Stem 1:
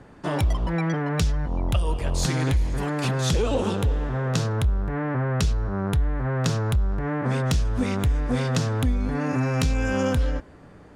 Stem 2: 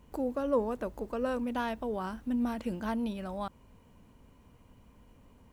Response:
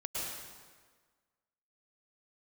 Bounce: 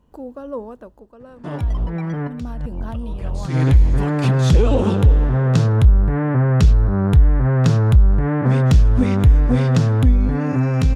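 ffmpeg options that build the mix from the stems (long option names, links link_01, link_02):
-filter_complex "[0:a]lowshelf=frequency=270:gain=8,dynaudnorm=framelen=230:gausssize=17:maxgain=11.5dB,adelay=1200,volume=-2dB[link_01];[1:a]equalizer=frequency=2200:width=4.9:gain=-11.5,volume=9.5dB,afade=type=out:start_time=0.65:duration=0.48:silence=0.334965,afade=type=in:start_time=1.96:duration=0.59:silence=0.316228,asplit=2[link_02][link_03];[link_03]apad=whole_len=536079[link_04];[link_01][link_04]sidechaincompress=threshold=-45dB:ratio=12:attack=37:release=116[link_05];[link_05][link_02]amix=inputs=2:normalize=0,highshelf=frequency=3800:gain=-7.5"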